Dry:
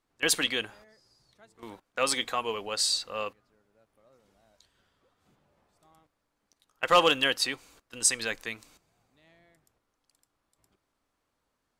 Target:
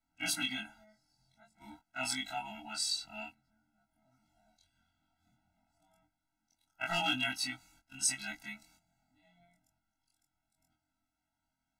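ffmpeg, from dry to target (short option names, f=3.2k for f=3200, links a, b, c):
-af "afftfilt=real='re':imag='-im':win_size=2048:overlap=0.75,afftfilt=real='re*eq(mod(floor(b*sr/1024/320),2),0)':imag='im*eq(mod(floor(b*sr/1024/320),2),0)':win_size=1024:overlap=0.75"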